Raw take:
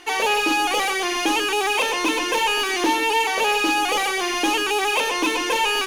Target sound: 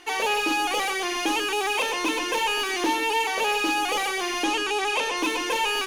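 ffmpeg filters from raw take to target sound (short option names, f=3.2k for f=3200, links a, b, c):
-filter_complex "[0:a]asettb=1/sr,asplit=3[a][b][c];[a]atrim=end=4.444[d];[b]atrim=start=4.44:end=5.17,asetpts=PTS-STARTPTS,afade=t=in:d=0.004:c=qsin,afade=t=out:st=0.726:d=0.004:c=qsin,lowpass=9.5k[e];[c]atrim=start=5.166[f];[d][e]acrossfade=d=0.004:c1=hsin:c2=qsin[g];[g][f]acrossfade=d=0.004:c1=qsin:c2=hsin,volume=-4dB"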